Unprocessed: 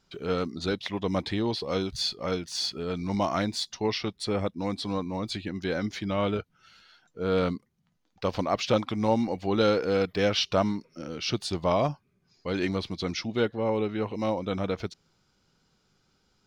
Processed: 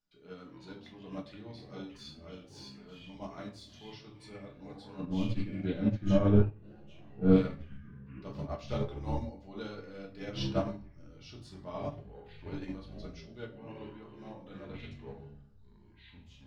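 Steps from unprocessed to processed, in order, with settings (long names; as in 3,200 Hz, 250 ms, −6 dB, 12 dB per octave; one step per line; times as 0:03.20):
0:05.00–0:07.36: spectral tilt −4.5 dB per octave
tuned comb filter 290 Hz, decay 0.15 s, harmonics all, mix 70%
convolution reverb RT60 0.50 s, pre-delay 5 ms, DRR −1 dB
delay with pitch and tempo change per echo 114 ms, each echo −6 semitones, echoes 3, each echo −6 dB
expander for the loud parts 2.5 to 1, over −29 dBFS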